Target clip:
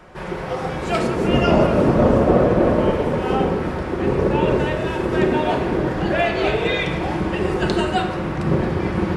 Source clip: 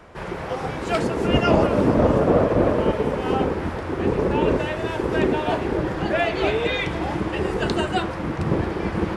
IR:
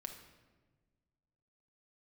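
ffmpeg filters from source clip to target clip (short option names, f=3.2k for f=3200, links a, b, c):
-filter_complex "[1:a]atrim=start_sample=2205[a];[0:a][a]afir=irnorm=-1:irlink=0,volume=5.5dB"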